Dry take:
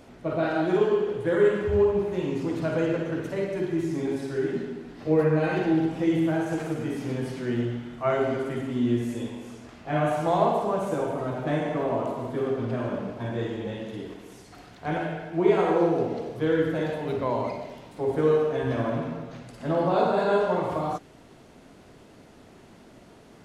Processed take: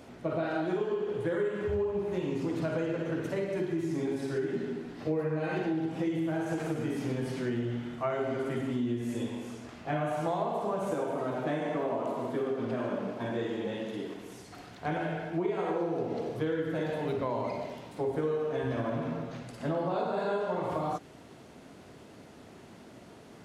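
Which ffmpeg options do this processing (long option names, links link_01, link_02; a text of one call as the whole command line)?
ffmpeg -i in.wav -filter_complex "[0:a]asettb=1/sr,asplit=3[link_01][link_02][link_03];[link_01]atrim=end=10.914[link_04];[link_02]atrim=start=10.91:end=14.16,asetpts=PTS-STARTPTS,afade=type=in:duration=0.004:curve=qsin,afade=type=out:start_time=3.246:duration=0.004:curve=qsin,highpass=170[link_05];[link_03]atrim=start=14.156[link_06];[link_04][link_05]acrossfade=duration=0.004:curve1=hsin:curve2=qsin[link_07];[link_07][link_06]acrossfade=duration=0.004:curve1=qsin:curve2=hsin,highpass=65,acompressor=threshold=-28dB:ratio=6" out.wav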